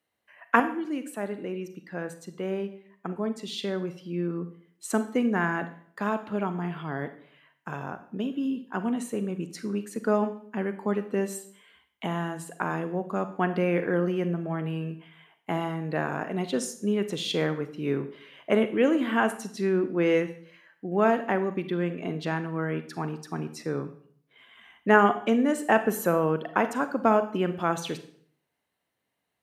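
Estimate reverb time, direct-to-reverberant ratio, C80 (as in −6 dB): 0.55 s, 10.5 dB, 16.0 dB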